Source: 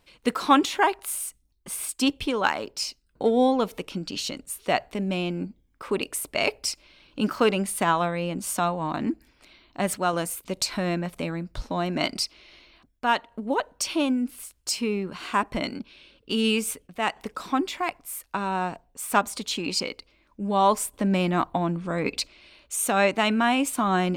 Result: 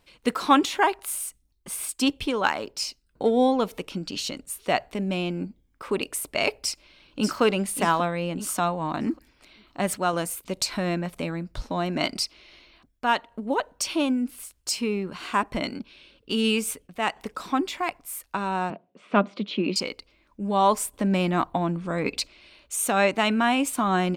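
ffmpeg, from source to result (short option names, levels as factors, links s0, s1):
-filter_complex "[0:a]asplit=2[s0][s1];[s1]afade=t=in:st=6.6:d=0.01,afade=t=out:st=7.41:d=0.01,aecho=0:1:590|1180|1770|2360:0.446684|0.156339|0.0547187|0.0191516[s2];[s0][s2]amix=inputs=2:normalize=0,asettb=1/sr,asplit=3[s3][s4][s5];[s3]atrim=end=18.704[s6];[s4]atrim=start=18.7:end=19.76,asetpts=PTS-STARTPTS,afade=t=in:d=0.004:c=qsin,afade=t=out:st=1.056:d=0.004:c=qsin,highpass=f=140:w=0.5412,highpass=f=140:w=1.3066,equalizer=f=200:t=q:w=4:g=10,equalizer=f=360:t=q:w=4:g=7,equalizer=f=590:t=q:w=4:g=6,equalizer=f=850:t=q:w=4:g=-7,equalizer=f=1700:t=q:w=4:g=-5,lowpass=f=3300:w=0.5412,lowpass=f=3300:w=1.3066[s7];[s5]atrim=start=19.756[s8];[s6][s7]acrossfade=d=0.004:c1=hsin:c2=qsin[s9];[s9][s8]acrossfade=d=0.004:c1=qsin:c2=hsin"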